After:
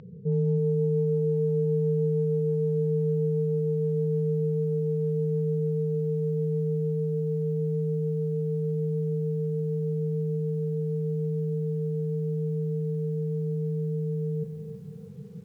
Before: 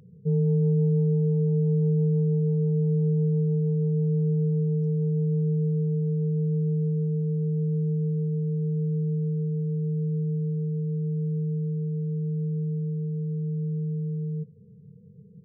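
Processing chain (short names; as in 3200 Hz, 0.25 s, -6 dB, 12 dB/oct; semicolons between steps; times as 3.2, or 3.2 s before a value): bell 81 Hz -8 dB 2.6 oct; in parallel at -1 dB: negative-ratio compressor -38 dBFS, ratio -1; on the sum: air absorption 180 m; lo-fi delay 0.323 s, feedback 35%, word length 10-bit, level -9 dB; gain +1.5 dB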